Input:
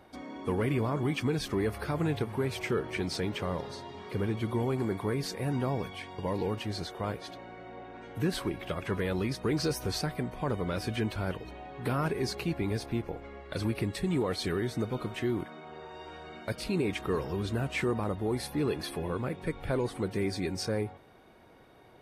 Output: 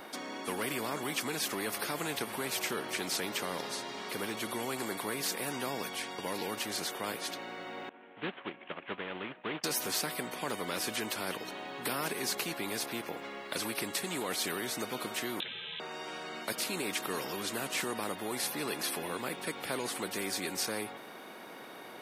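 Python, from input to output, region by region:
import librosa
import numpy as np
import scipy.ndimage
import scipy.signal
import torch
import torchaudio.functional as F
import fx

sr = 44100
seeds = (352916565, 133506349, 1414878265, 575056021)

y = fx.chain(x, sr, fx.cvsd(bps=16000),
    fx.upward_expand(threshold_db=-40.0, expansion=2.5), at=(7.89, 9.64))
y = fx.chain(y, sr, fx.freq_invert(carrier_hz=3800),
    fx.low_shelf_res(hz=590.0, db=8.0, q=3.0), at=(15.4, 15.8))
y = scipy.signal.sosfilt(scipy.signal.butter(4, 220.0, 'highpass', fs=sr, output='sos'), y)
y = fx.high_shelf(y, sr, hz=11000.0, db=7.5)
y = fx.spectral_comp(y, sr, ratio=2.0)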